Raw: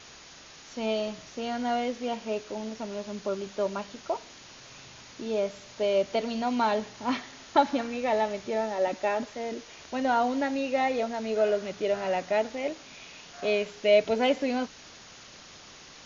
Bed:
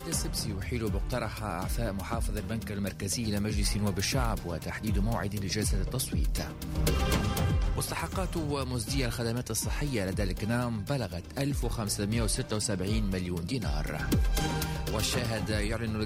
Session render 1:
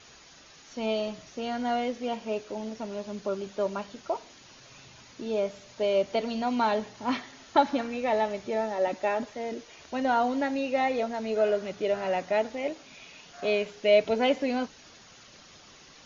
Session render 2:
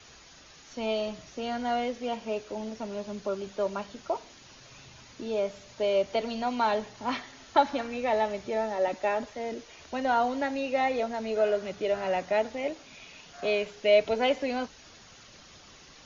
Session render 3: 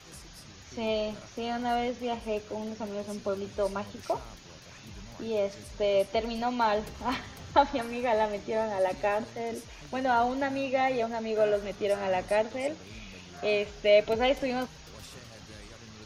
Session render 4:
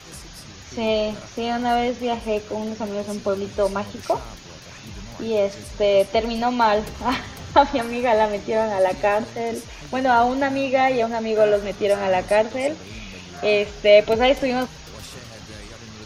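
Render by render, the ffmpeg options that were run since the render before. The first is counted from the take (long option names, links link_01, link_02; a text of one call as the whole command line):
ffmpeg -i in.wav -af "afftdn=noise_reduction=6:noise_floor=-49" out.wav
ffmpeg -i in.wav -filter_complex "[0:a]acrossover=split=100|350|1600[link_01][link_02][link_03][link_04];[link_01]acontrast=38[link_05];[link_02]alimiter=level_in=10.5dB:limit=-24dB:level=0:latency=1:release=340,volume=-10.5dB[link_06];[link_05][link_06][link_03][link_04]amix=inputs=4:normalize=0" out.wav
ffmpeg -i in.wav -i bed.wav -filter_complex "[1:a]volume=-18dB[link_01];[0:a][link_01]amix=inputs=2:normalize=0" out.wav
ffmpeg -i in.wav -af "volume=8.5dB,alimiter=limit=-2dB:level=0:latency=1" out.wav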